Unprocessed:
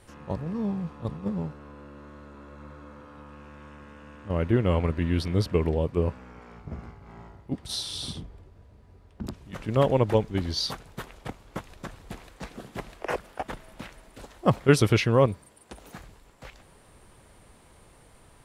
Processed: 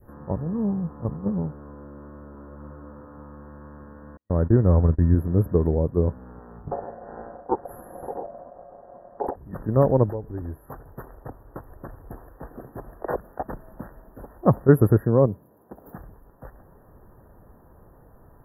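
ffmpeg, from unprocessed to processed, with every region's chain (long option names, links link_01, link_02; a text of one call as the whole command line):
ffmpeg -i in.wav -filter_complex "[0:a]asettb=1/sr,asplit=3[link_01][link_02][link_03];[link_01]atrim=end=4.174[link_04];[link_02]atrim=start=4.17:end=5.15,asetpts=PTS-STARTPTS,afade=type=in:duration=0.004:curve=qsin,afade=type=out:start_time=0.976:duration=0.004:curve=qsin,agate=range=-50dB:threshold=-33dB:ratio=16:release=100:detection=peak,asubboost=boost=4.5:cutoff=190[link_05];[link_03]atrim=start=5.146[link_06];[link_04][link_05]acrossfade=duration=0.004:curve1=hsin:curve2=qsin[link_07];[link_07][link_06]acrossfade=duration=0.004:curve1=qsin:curve2=hsin,asettb=1/sr,asplit=3[link_08][link_09][link_10];[link_08]atrim=end=6.714[link_11];[link_09]atrim=start=6.71:end=9.36,asetpts=PTS-STARTPTS,afade=type=in:duration=0.004:curve=qsin,afade=type=out:start_time=2.646:duration=0.004:curve=qsin,lowpass=frequency=10000:width=0.5412,lowpass=frequency=10000:width=1.3066,acontrast=76,aeval=exprs='val(0)*sin(2*PI*630*n/s)':channel_layout=same[link_12];[link_10]atrim=start=9.356[link_13];[link_11][link_12]acrossfade=duration=0.004:curve1=hsin:curve2=qsin[link_14];[link_14][link_13]acrossfade=duration=0.004:curve1=qsin:curve2=hsin,asettb=1/sr,asplit=3[link_15][link_16][link_17];[link_15]atrim=end=10.094[link_18];[link_16]atrim=start=10.09:end=12.91,asetpts=PTS-STARTPTS,afade=type=in:duration=0.004:curve=qsin,afade=type=out:start_time=2.816:duration=0.004:curve=qsin,equalizer=frequency=190:width=4.6:gain=-12.5,acompressor=threshold=-35dB:ratio=2.5:attack=3.2:release=140:knee=1:detection=peak[link_19];[link_17]atrim=start=12.906[link_20];[link_18][link_19]acrossfade=duration=0.004:curve1=hsin:curve2=qsin[link_21];[link_21][link_20]acrossfade=duration=0.004:curve1=qsin:curve2=hsin,asettb=1/sr,asplit=3[link_22][link_23][link_24];[link_22]atrim=end=15.054[link_25];[link_23]atrim=start=15.05:end=15.87,asetpts=PTS-STARTPTS,afade=type=in:duration=0.004:curve=qsin,afade=type=out:start_time=0.816:duration=0.004:curve=qsin,highpass=110,equalizer=frequency=1600:width_type=o:width=1.2:gain=-4.5[link_26];[link_24]atrim=start=15.866[link_27];[link_25][link_26]acrossfade=duration=0.004:curve1=hsin:curve2=qsin[link_28];[link_28][link_27]acrossfade=duration=0.004:curve1=qsin:curve2=hsin,adynamicequalizer=threshold=0.01:dfrequency=1100:dqfactor=0.73:tfrequency=1100:tqfactor=0.73:attack=5:release=100:ratio=0.375:range=2:mode=cutabove:tftype=bell,afftfilt=real='re*(1-between(b*sr/4096,1900,11000))':imag='im*(1-between(b*sr/4096,1900,11000))':win_size=4096:overlap=0.75,equalizer=frequency=2400:width=1:gain=-14,volume=4.5dB" out.wav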